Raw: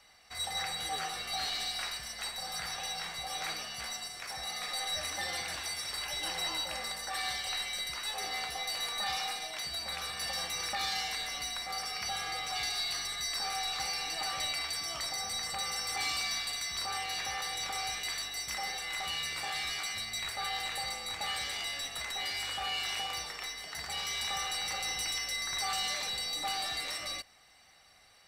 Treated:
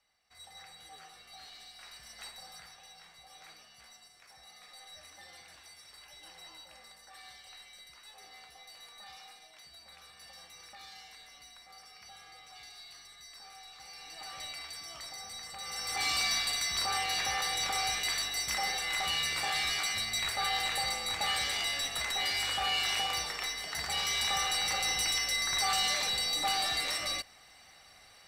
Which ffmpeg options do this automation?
-af "volume=4.47,afade=t=in:st=1.78:d=0.43:silence=0.375837,afade=t=out:st=2.21:d=0.55:silence=0.354813,afade=t=in:st=13.8:d=0.62:silence=0.375837,afade=t=in:st=15.59:d=0.64:silence=0.251189"

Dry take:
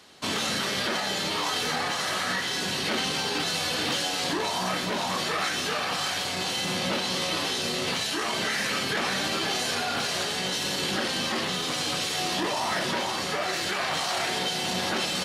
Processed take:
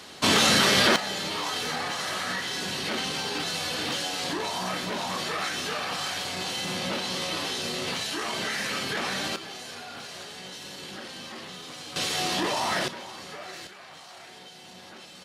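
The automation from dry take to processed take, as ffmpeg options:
-af "asetnsamples=n=441:p=0,asendcmd='0.96 volume volume -2.5dB;9.36 volume volume -12dB;11.96 volume volume 0.5dB;12.88 volume volume -11.5dB;13.67 volume volume -18.5dB',volume=2.51"

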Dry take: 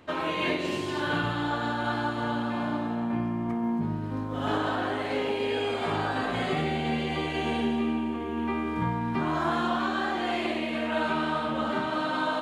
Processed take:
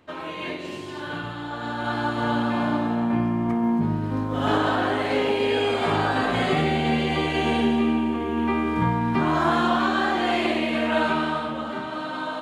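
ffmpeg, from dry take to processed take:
-af "volume=2,afade=t=in:st=1.5:d=0.85:silence=0.316228,afade=t=out:st=10.95:d=0.69:silence=0.398107"

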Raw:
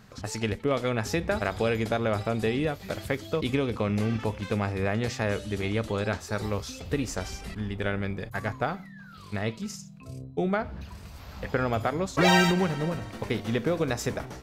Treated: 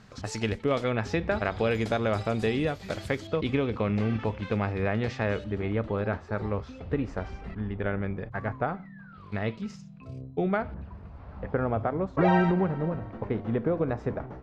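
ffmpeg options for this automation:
-af "asetnsamples=n=441:p=0,asendcmd='0.84 lowpass f 3600;1.71 lowpass f 7900;3.27 lowpass f 3200;5.44 lowpass f 1700;9.32 lowpass f 2900;10.74 lowpass f 1200',lowpass=7300"

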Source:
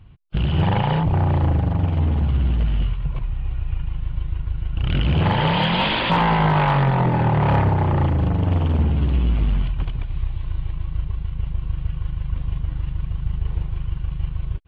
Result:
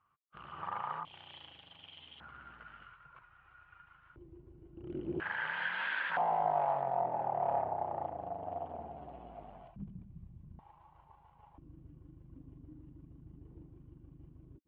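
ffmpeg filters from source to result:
-af "asetnsamples=n=441:p=0,asendcmd='1.05 bandpass f 3200;2.2 bandpass f 1400;4.16 bandpass f 350;5.2 bandpass f 1600;6.17 bandpass f 710;9.76 bandpass f 200;10.59 bandpass f 860;11.58 bandpass f 290',bandpass=f=1200:t=q:w=9.5:csg=0"

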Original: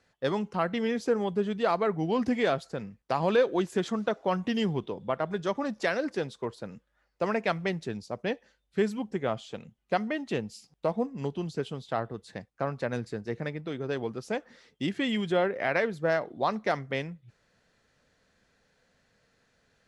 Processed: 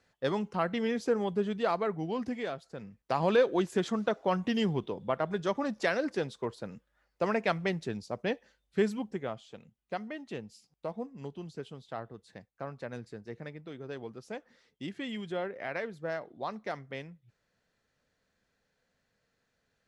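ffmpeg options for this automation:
-af "volume=2.82,afade=t=out:st=1.48:d=1.14:silence=0.316228,afade=t=in:st=2.62:d=0.58:silence=0.281838,afade=t=out:st=8.91:d=0.45:silence=0.398107"

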